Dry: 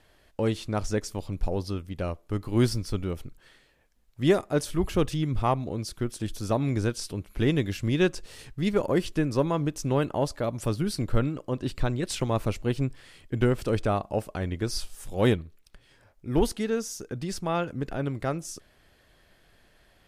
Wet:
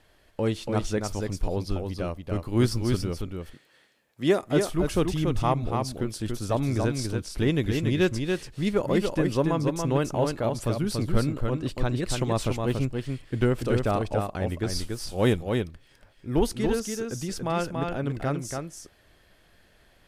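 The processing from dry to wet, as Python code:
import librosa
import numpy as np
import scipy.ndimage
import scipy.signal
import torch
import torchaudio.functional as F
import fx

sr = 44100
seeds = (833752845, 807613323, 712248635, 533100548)

p1 = fx.highpass(x, sr, hz=180.0, slope=12, at=(3.25, 4.43))
y = p1 + fx.echo_single(p1, sr, ms=284, db=-4.5, dry=0)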